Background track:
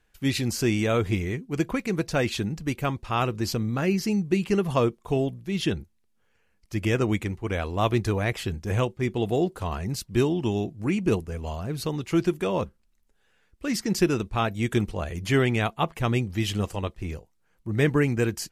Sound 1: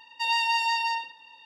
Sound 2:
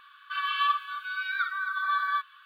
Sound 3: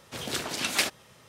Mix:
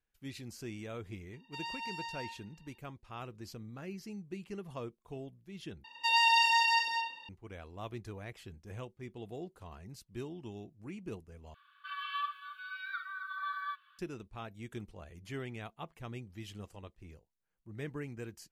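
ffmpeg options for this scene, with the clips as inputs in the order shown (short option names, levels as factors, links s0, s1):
-filter_complex "[1:a]asplit=2[s0][s1];[0:a]volume=0.106[s2];[s1]aecho=1:1:116.6|172|224.5:0.282|0.316|0.562[s3];[s2]asplit=3[s4][s5][s6];[s4]atrim=end=5.844[s7];[s3]atrim=end=1.45,asetpts=PTS-STARTPTS,volume=0.841[s8];[s5]atrim=start=7.286:end=11.544[s9];[2:a]atrim=end=2.45,asetpts=PTS-STARTPTS,volume=0.282[s10];[s6]atrim=start=13.986[s11];[s0]atrim=end=1.45,asetpts=PTS-STARTPTS,volume=0.15,afade=t=in:d=0.004:c=hsin,afade=t=out:st=1.446:d=0.004:c=hsin,adelay=1330[s12];[s7][s8]acrossfade=d=0.004:c1=hsin:c2=hsin[s13];[s13][s9]acrossfade=d=0.004:c1=hsin:c2=hsin[s14];[s14][s10]acrossfade=d=0.004:c1=hsin:c2=hsin[s15];[s15][s11]acrossfade=d=0.004:c1=hsin:c2=hsin[s16];[s16][s12]amix=inputs=2:normalize=0"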